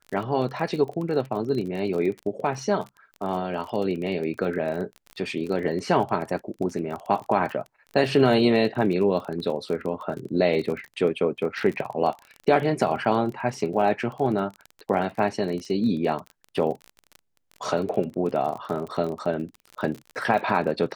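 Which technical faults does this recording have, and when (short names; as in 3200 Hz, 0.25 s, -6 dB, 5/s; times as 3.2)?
crackle 29/s -31 dBFS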